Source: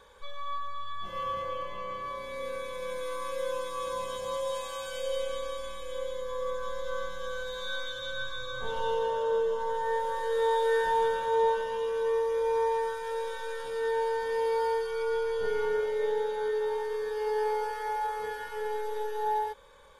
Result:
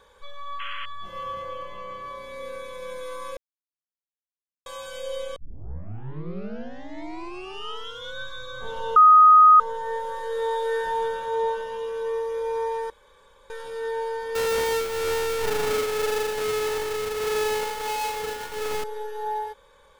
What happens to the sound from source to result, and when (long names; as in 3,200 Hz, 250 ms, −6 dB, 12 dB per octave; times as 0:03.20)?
0:00.59–0:00.86: sound drawn into the spectrogram noise 1,000–3,400 Hz −36 dBFS
0:03.37–0:04.66: silence
0:05.36: tape start 2.83 s
0:08.96–0:09.60: beep over 1,250 Hz −9 dBFS
0:12.90–0:13.50: fill with room tone
0:14.35–0:18.84: each half-wave held at its own peak